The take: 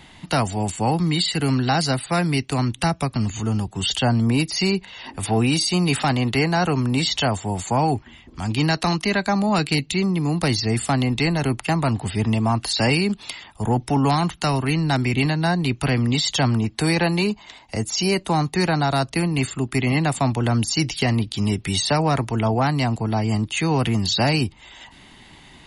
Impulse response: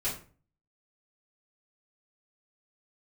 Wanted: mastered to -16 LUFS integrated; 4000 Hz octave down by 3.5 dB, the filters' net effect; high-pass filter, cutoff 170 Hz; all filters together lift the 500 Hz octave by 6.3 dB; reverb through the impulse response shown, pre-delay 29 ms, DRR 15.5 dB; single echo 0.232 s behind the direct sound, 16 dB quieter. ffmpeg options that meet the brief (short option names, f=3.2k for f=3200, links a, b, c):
-filter_complex "[0:a]highpass=170,equalizer=f=500:t=o:g=8.5,equalizer=f=4k:t=o:g=-4.5,aecho=1:1:232:0.158,asplit=2[a][b];[1:a]atrim=start_sample=2205,adelay=29[c];[b][c]afir=irnorm=-1:irlink=0,volume=-21dB[d];[a][d]amix=inputs=2:normalize=0,volume=4.5dB"